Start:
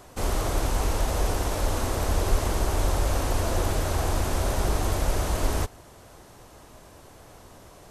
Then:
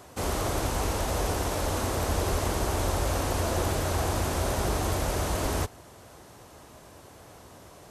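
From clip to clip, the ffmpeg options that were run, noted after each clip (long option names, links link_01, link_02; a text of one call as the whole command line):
ffmpeg -i in.wav -af "highpass=62" out.wav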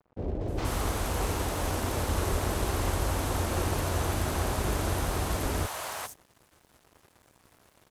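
ffmpeg -i in.wav -filter_complex "[0:a]acrossover=split=610|5800[link_01][link_02][link_03];[link_02]adelay=410[link_04];[link_03]adelay=480[link_05];[link_01][link_04][link_05]amix=inputs=3:normalize=0,aeval=exprs='sgn(val(0))*max(abs(val(0))-0.00376,0)':channel_layout=same" out.wav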